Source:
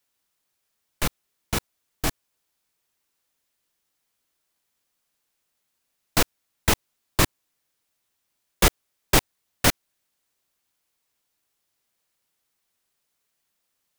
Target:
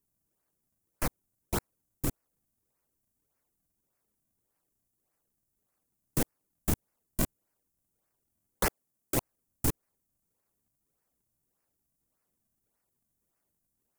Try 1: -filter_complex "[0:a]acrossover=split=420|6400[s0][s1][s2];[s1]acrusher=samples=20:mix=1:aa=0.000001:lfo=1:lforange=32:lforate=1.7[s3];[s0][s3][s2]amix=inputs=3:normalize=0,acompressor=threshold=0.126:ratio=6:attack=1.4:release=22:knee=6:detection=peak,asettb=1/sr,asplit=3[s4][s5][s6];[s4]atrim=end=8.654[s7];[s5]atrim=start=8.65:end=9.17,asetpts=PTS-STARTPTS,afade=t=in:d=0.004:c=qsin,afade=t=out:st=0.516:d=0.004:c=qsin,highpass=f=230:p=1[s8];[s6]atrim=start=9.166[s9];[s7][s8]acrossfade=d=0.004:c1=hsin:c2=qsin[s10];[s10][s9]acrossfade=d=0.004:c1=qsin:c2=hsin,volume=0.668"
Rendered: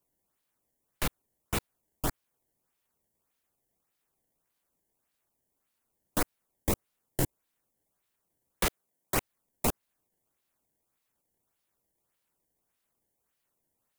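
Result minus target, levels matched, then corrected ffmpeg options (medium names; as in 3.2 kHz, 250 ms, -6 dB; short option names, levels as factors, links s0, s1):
decimation with a swept rate: distortion -13 dB
-filter_complex "[0:a]acrossover=split=420|6400[s0][s1][s2];[s1]acrusher=samples=57:mix=1:aa=0.000001:lfo=1:lforange=91.2:lforate=1.7[s3];[s0][s3][s2]amix=inputs=3:normalize=0,acompressor=threshold=0.126:ratio=6:attack=1.4:release=22:knee=6:detection=peak,asettb=1/sr,asplit=3[s4][s5][s6];[s4]atrim=end=8.654[s7];[s5]atrim=start=8.65:end=9.17,asetpts=PTS-STARTPTS,afade=t=in:d=0.004:c=qsin,afade=t=out:st=0.516:d=0.004:c=qsin,highpass=f=230:p=1[s8];[s6]atrim=start=9.166[s9];[s7][s8]acrossfade=d=0.004:c1=hsin:c2=qsin[s10];[s10][s9]acrossfade=d=0.004:c1=qsin:c2=hsin,volume=0.668"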